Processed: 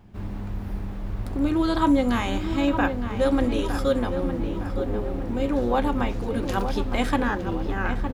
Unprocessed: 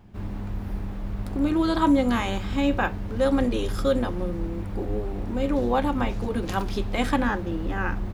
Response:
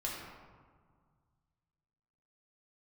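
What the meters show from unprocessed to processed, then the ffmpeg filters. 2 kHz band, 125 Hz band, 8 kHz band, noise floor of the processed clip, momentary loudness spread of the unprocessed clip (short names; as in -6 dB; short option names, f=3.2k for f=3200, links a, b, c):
+0.5 dB, 0.0 dB, 0.0 dB, -32 dBFS, 11 LU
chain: -filter_complex "[0:a]asplit=2[a][b];[b]adelay=912,lowpass=f=2.3k:p=1,volume=-8dB,asplit=2[c][d];[d]adelay=912,lowpass=f=2.3k:p=1,volume=0.51,asplit=2[e][f];[f]adelay=912,lowpass=f=2.3k:p=1,volume=0.51,asplit=2[g][h];[h]adelay=912,lowpass=f=2.3k:p=1,volume=0.51,asplit=2[i][j];[j]adelay=912,lowpass=f=2.3k:p=1,volume=0.51,asplit=2[k][l];[l]adelay=912,lowpass=f=2.3k:p=1,volume=0.51[m];[a][c][e][g][i][k][m]amix=inputs=7:normalize=0"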